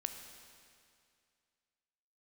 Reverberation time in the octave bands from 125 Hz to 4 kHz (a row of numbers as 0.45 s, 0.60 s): 2.3 s, 2.3 s, 2.3 s, 2.3 s, 2.3 s, 2.2 s